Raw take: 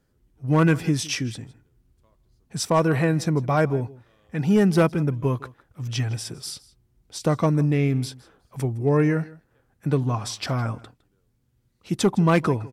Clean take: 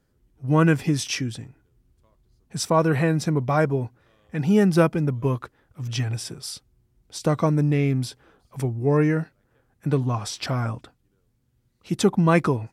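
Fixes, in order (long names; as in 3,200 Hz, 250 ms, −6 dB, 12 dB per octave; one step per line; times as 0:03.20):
clipped peaks rebuilt −11.5 dBFS
echo removal 160 ms −21 dB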